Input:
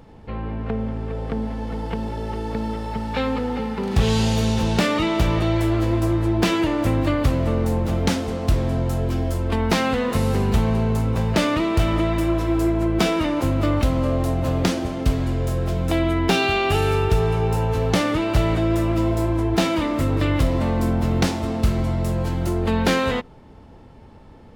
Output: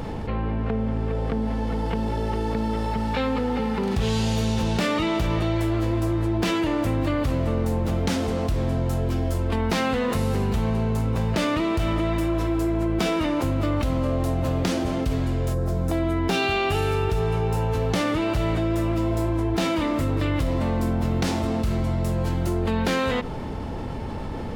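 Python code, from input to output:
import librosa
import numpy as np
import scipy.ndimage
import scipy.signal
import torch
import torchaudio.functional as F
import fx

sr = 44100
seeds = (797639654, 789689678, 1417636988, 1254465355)

y = fx.peak_eq(x, sr, hz=2900.0, db=fx.line((15.53, -15.0), (16.32, -3.0)), octaves=1.2, at=(15.53, 16.32), fade=0.02)
y = fx.env_flatten(y, sr, amount_pct=70)
y = y * 10.0 ** (-8.0 / 20.0)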